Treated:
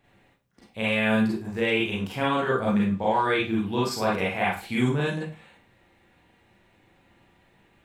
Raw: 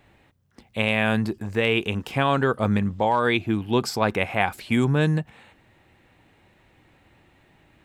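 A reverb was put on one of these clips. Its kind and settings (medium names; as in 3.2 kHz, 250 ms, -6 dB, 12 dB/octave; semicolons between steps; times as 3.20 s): Schroeder reverb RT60 0.33 s, combs from 32 ms, DRR -6 dB; trim -9 dB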